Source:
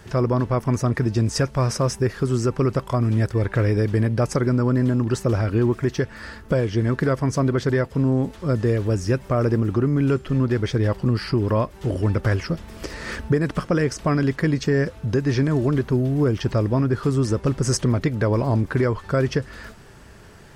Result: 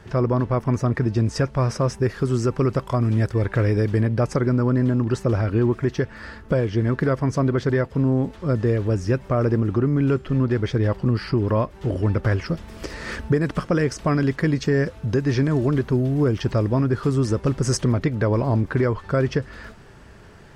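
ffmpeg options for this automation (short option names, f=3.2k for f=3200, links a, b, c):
-af "asetnsamples=n=441:p=0,asendcmd='2.03 lowpass f 7600;4.01 lowpass f 3700;12.46 lowpass f 8800;17.93 lowpass f 4200',lowpass=f=3.1k:p=1"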